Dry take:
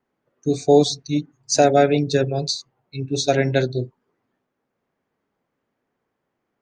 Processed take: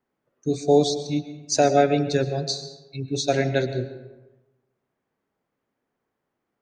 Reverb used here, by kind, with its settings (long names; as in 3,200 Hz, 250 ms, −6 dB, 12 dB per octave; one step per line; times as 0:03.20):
comb and all-pass reverb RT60 1.1 s, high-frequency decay 0.6×, pre-delay 80 ms, DRR 11 dB
level −3.5 dB